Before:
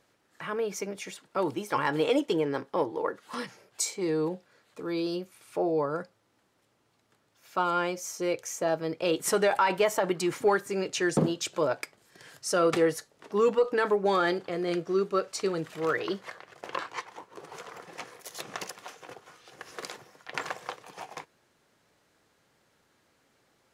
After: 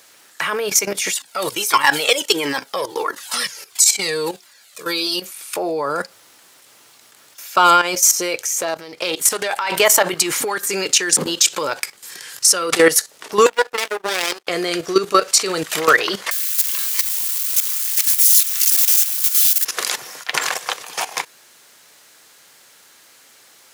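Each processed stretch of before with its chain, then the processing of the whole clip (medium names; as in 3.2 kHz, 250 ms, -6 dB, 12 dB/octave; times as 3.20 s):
1.13–5.22 s: treble shelf 2.2 kHz +8 dB + Shepard-style flanger falling 1.5 Hz
8.38–9.72 s: compression 3:1, threshold -39 dBFS + loudspeaker Doppler distortion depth 0.16 ms
10.43–12.73 s: band-stop 650 Hz, Q 5.2 + compression 8:1, threshold -30 dBFS
13.46–14.47 s: comb filter that takes the minimum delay 0.35 ms + high-pass 290 Hz 24 dB/octave + power-law waveshaper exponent 2
16.31–19.65 s: jump at every zero crossing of -32.5 dBFS + high-pass 1.1 kHz + differentiator
whole clip: tilt EQ +4 dB/octave; level held to a coarse grid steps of 14 dB; loudness maximiser +21.5 dB; trim -1 dB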